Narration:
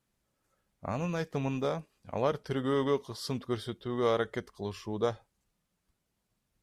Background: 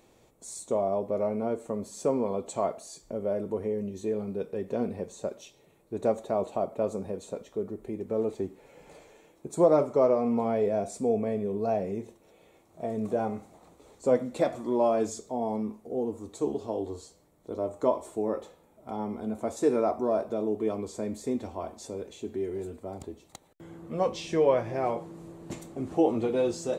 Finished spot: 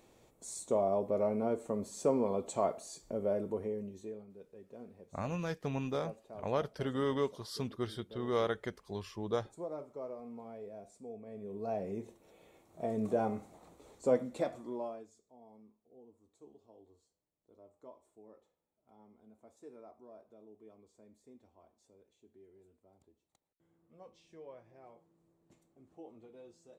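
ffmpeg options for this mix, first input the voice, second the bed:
ffmpeg -i stem1.wav -i stem2.wav -filter_complex "[0:a]adelay=4300,volume=-4dB[link_01];[1:a]volume=14.5dB,afade=type=out:start_time=3.29:duration=0.98:silence=0.133352,afade=type=in:start_time=11.25:duration=1.09:silence=0.133352,afade=type=out:start_time=13.85:duration=1.21:silence=0.0562341[link_02];[link_01][link_02]amix=inputs=2:normalize=0" out.wav

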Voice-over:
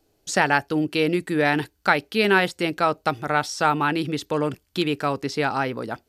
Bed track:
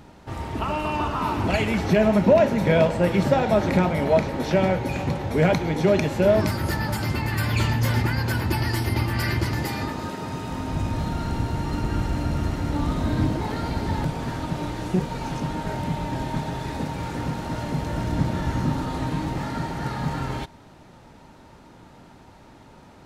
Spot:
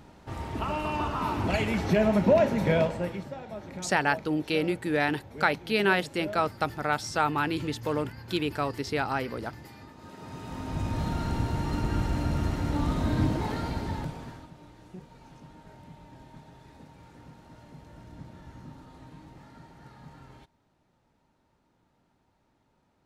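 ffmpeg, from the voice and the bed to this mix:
ffmpeg -i stem1.wav -i stem2.wav -filter_complex "[0:a]adelay=3550,volume=-5.5dB[link_01];[1:a]volume=12.5dB,afade=type=out:start_time=2.69:duration=0.57:silence=0.16788,afade=type=in:start_time=9.96:duration=1.13:silence=0.141254,afade=type=out:start_time=13.46:duration=1.05:silence=0.112202[link_02];[link_01][link_02]amix=inputs=2:normalize=0" out.wav

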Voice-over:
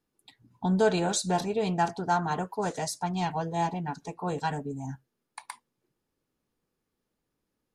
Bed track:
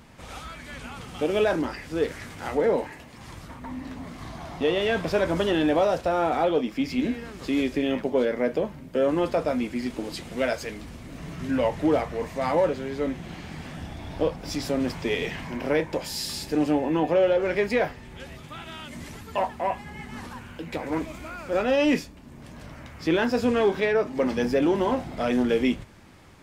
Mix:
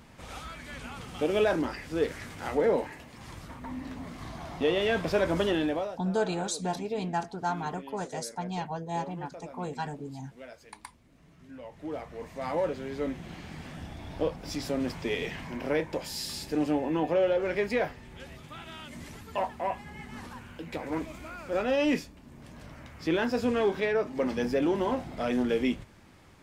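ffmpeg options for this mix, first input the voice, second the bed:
ffmpeg -i stem1.wav -i stem2.wav -filter_complex "[0:a]adelay=5350,volume=-4.5dB[link_01];[1:a]volume=14dB,afade=type=out:start_time=5.45:duration=0.53:silence=0.11885,afade=type=in:start_time=11.67:duration=1.29:silence=0.149624[link_02];[link_01][link_02]amix=inputs=2:normalize=0" out.wav

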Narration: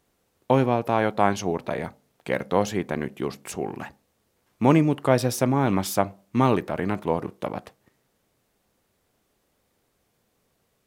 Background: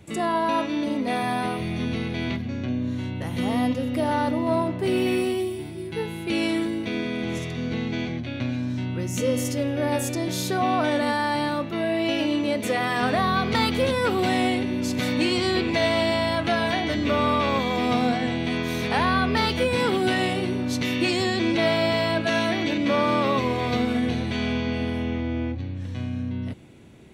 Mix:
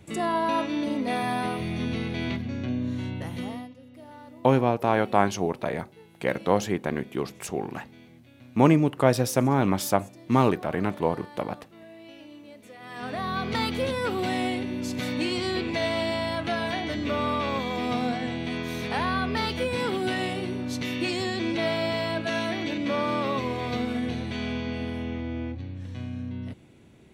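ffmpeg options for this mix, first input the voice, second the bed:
ffmpeg -i stem1.wav -i stem2.wav -filter_complex "[0:a]adelay=3950,volume=-0.5dB[link_01];[1:a]volume=15.5dB,afade=type=out:start_time=3.13:duration=0.56:silence=0.0944061,afade=type=in:start_time=12.78:duration=0.72:silence=0.133352[link_02];[link_01][link_02]amix=inputs=2:normalize=0" out.wav

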